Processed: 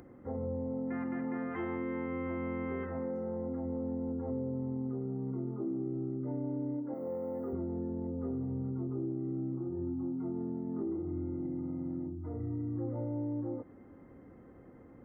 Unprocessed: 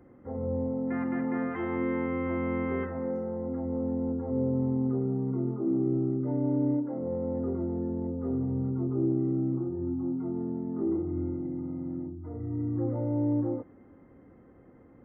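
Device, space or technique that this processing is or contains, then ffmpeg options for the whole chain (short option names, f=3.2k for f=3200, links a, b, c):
upward and downward compression: -filter_complex "[0:a]asettb=1/sr,asplit=3[a][b][c];[a]atrim=end=6.944[d];[b]atrim=start=6.94:end=7.53,asetpts=PTS-STARTPTS,afade=t=in:d=0.004:c=qsin,afade=t=out:st=0.586:d=0.004:c=qsin,aemphasis=mode=production:type=riaa[e];[c]atrim=start=7.526[f];[d][e]acrossfade=d=0.004:c1=hsin:c2=qsin[g];[g][f]acrossfade=d=0.004:c1=qsin:c2=hsin,acompressor=mode=upward:threshold=-51dB:ratio=2.5,acompressor=threshold=-33dB:ratio=6"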